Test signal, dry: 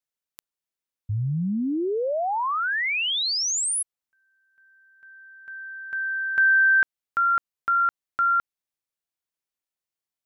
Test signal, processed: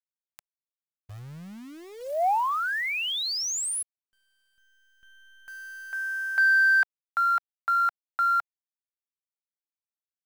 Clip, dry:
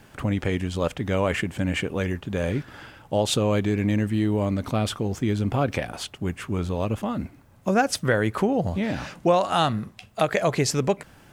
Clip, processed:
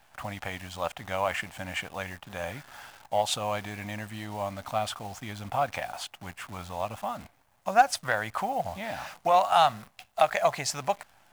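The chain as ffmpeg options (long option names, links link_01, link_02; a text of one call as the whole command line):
ffmpeg -i in.wav -af "lowshelf=frequency=540:width_type=q:width=3:gain=-10,acrusher=bits=8:dc=4:mix=0:aa=0.000001,aeval=exprs='0.631*(cos(1*acos(clip(val(0)/0.631,-1,1)))-cos(1*PI/2))+0.02*(cos(7*acos(clip(val(0)/0.631,-1,1)))-cos(7*PI/2))':channel_layout=same,volume=-2.5dB" out.wav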